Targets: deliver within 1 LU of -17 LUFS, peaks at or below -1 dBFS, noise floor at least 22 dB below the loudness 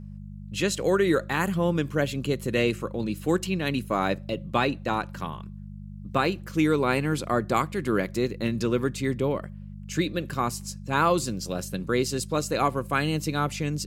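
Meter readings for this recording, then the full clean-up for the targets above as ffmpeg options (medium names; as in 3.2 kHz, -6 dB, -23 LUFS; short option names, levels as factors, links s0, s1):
hum 50 Hz; highest harmonic 200 Hz; hum level -37 dBFS; loudness -26.5 LUFS; peak level -9.0 dBFS; loudness target -17.0 LUFS
-> -af "bandreject=f=50:t=h:w=4,bandreject=f=100:t=h:w=4,bandreject=f=150:t=h:w=4,bandreject=f=200:t=h:w=4"
-af "volume=2.99,alimiter=limit=0.891:level=0:latency=1"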